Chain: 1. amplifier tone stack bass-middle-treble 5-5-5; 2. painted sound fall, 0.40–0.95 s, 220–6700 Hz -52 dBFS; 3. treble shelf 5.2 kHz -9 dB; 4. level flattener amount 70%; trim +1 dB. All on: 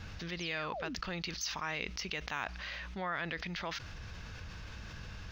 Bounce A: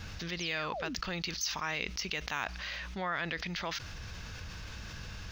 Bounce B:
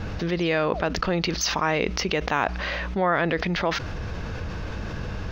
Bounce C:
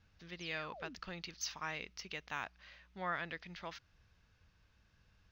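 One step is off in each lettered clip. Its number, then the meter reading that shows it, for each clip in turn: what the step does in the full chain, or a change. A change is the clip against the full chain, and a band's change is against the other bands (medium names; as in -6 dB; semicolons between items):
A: 3, 8 kHz band +2.5 dB; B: 1, 500 Hz band +5.5 dB; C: 4, crest factor change -2.0 dB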